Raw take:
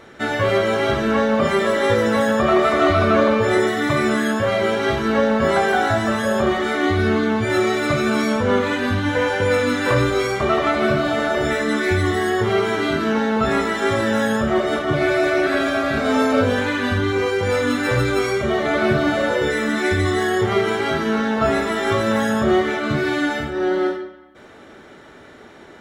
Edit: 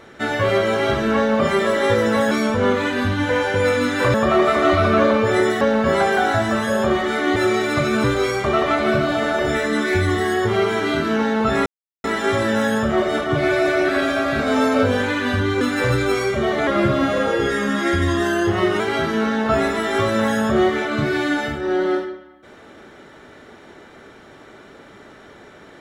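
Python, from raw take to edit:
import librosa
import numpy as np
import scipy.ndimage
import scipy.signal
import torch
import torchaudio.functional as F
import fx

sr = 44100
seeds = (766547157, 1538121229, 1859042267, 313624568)

y = fx.edit(x, sr, fx.cut(start_s=3.78, length_s=1.39),
    fx.cut(start_s=6.92, length_s=0.57),
    fx.move(start_s=8.17, length_s=1.83, to_s=2.31),
    fx.insert_silence(at_s=13.62, length_s=0.38),
    fx.cut(start_s=17.19, length_s=0.49),
    fx.speed_span(start_s=18.74, length_s=1.98, speed=0.93), tone=tone)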